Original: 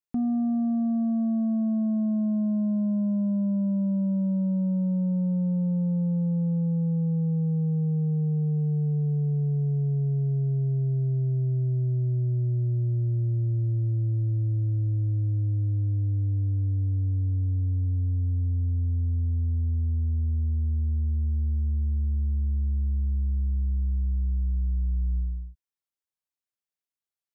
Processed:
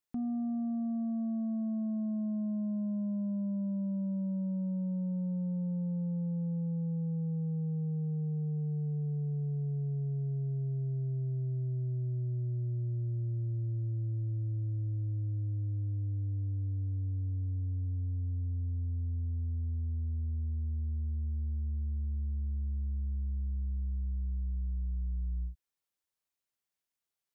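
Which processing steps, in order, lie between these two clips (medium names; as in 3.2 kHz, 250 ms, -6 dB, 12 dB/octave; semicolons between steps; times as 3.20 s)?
peak limiter -33.5 dBFS, peak gain reduction 11 dB; trim +2.5 dB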